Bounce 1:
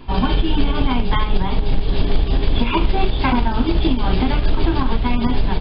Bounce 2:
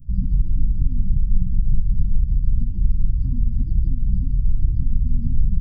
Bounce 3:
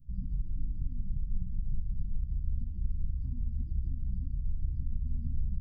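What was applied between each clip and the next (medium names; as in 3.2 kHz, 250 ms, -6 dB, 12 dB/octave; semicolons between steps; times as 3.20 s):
time-frequency box 0.71–2.97 s, 980–2100 Hz -11 dB; inverse Chebyshev band-stop 400–4000 Hz, stop band 50 dB; gain riding 0.5 s
feedback comb 71 Hz, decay 1.8 s, harmonics all, mix 70%; trim -5 dB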